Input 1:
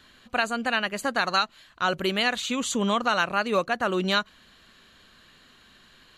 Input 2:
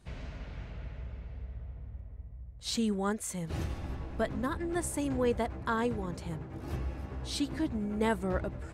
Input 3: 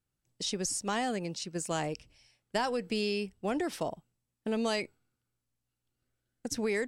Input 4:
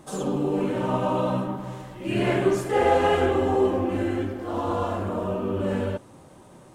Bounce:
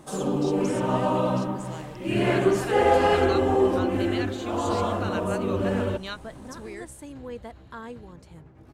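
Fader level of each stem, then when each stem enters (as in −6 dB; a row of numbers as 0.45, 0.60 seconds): −12.0, −8.5, −9.5, +0.5 decibels; 1.95, 2.05, 0.00, 0.00 seconds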